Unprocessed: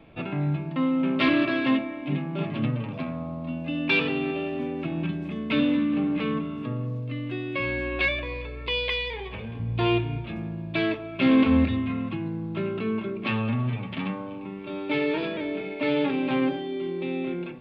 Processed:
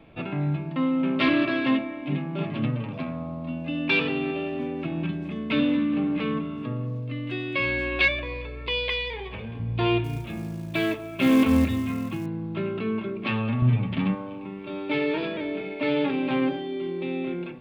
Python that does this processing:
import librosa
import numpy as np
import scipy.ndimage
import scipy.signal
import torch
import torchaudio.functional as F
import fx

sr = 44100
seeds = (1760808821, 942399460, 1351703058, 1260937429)

y = fx.high_shelf(x, sr, hz=2200.0, db=8.0, at=(7.27, 8.08))
y = fx.quant_companded(y, sr, bits=6, at=(10.04, 12.26))
y = fx.low_shelf(y, sr, hz=240.0, db=10.5, at=(13.62, 14.15))